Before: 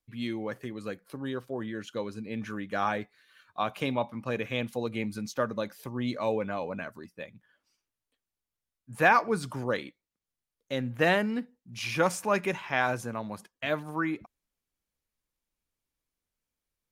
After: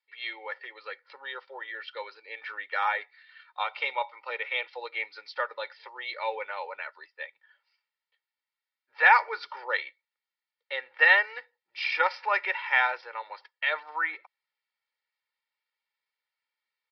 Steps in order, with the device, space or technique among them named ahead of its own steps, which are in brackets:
0:03.63–0:04.65: notch filter 1,700 Hz, Q 9.4
musical greeting card (downsampling to 11,025 Hz; high-pass filter 680 Hz 24 dB per octave; parametric band 2,000 Hz +9.5 dB 0.34 octaves)
comb filter 2.2 ms, depth 96%

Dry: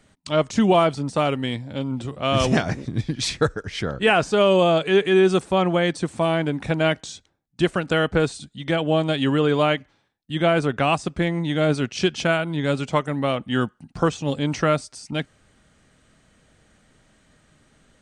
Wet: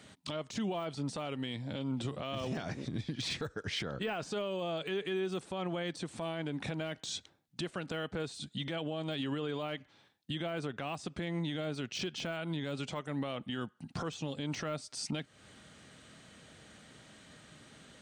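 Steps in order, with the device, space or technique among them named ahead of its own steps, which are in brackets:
broadcast voice chain (high-pass filter 96 Hz; de-essing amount 80%; downward compressor 5 to 1, threshold −35 dBFS, peak gain reduction 19.5 dB; parametric band 3,600 Hz +5 dB 0.97 octaves; brickwall limiter −29.5 dBFS, peak gain reduction 10 dB)
level +2.5 dB

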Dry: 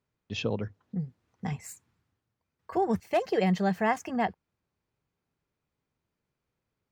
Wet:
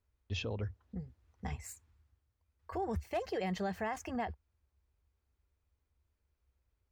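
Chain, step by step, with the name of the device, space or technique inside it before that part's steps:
car stereo with a boomy subwoofer (low shelf with overshoot 100 Hz +13.5 dB, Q 3; brickwall limiter −24 dBFS, peak gain reduction 9 dB)
level −4 dB

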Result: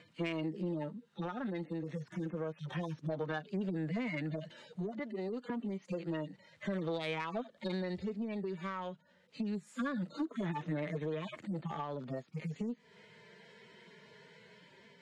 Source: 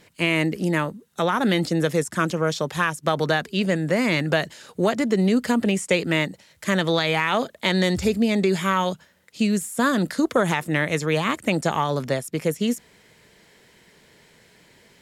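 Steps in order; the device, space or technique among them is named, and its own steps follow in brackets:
harmonic-percussive split with one part muted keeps harmonic
0:04.99–0:05.50: high-pass filter 420 Hz 12 dB per octave
AM radio (band-pass filter 160–3,900 Hz; downward compressor 8 to 1, threshold −33 dBFS, peak gain reduction 16 dB; soft clipping −27.5 dBFS, distortion −21 dB; amplitude tremolo 0.29 Hz, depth 30%)
level +1 dB

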